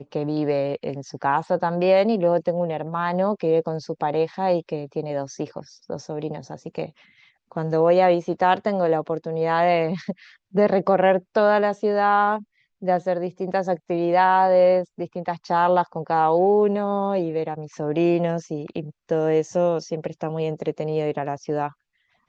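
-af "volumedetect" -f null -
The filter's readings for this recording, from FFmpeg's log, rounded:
mean_volume: -22.3 dB
max_volume: -5.8 dB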